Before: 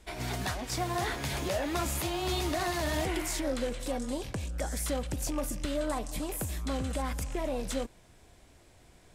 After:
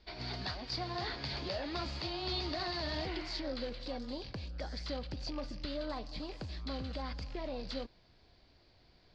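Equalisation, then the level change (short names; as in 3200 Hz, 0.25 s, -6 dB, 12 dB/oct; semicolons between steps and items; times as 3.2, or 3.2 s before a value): synth low-pass 4600 Hz, resonance Q 9.8; air absorption 170 m; -7.0 dB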